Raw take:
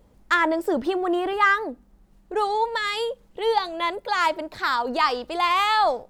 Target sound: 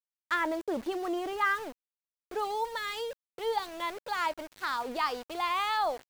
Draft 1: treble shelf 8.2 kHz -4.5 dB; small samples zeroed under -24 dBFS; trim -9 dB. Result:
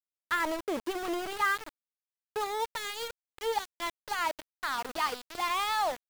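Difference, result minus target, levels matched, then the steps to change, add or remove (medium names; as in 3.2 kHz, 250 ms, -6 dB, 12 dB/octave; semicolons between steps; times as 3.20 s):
small samples zeroed: distortion +11 dB
change: small samples zeroed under -32.5 dBFS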